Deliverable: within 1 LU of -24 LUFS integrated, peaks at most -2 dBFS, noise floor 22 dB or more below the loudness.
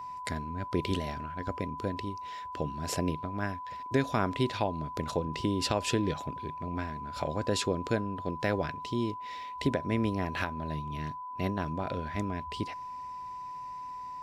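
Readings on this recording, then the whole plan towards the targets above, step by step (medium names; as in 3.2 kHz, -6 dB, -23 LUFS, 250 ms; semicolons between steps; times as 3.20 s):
steady tone 1 kHz; tone level -38 dBFS; loudness -33.5 LUFS; peak level -14.5 dBFS; loudness target -24.0 LUFS
-> band-stop 1 kHz, Q 30; trim +9.5 dB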